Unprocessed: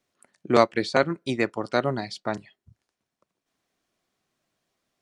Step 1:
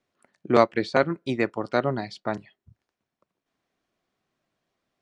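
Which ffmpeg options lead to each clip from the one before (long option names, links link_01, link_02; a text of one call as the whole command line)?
ffmpeg -i in.wav -af "aemphasis=mode=reproduction:type=50fm" out.wav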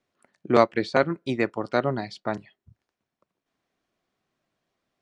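ffmpeg -i in.wav -af anull out.wav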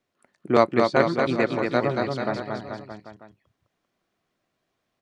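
ffmpeg -i in.wav -af "aecho=1:1:230|437|623.3|791|941.9:0.631|0.398|0.251|0.158|0.1" out.wav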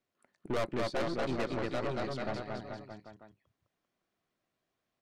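ffmpeg -i in.wav -af "aeval=exprs='(tanh(17.8*val(0)+0.65)-tanh(0.65))/17.8':channel_layout=same,volume=-4dB" out.wav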